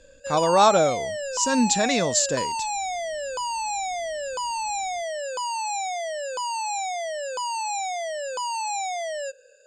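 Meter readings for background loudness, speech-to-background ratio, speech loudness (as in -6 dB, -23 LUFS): -28.5 LUFS, 6.5 dB, -22.0 LUFS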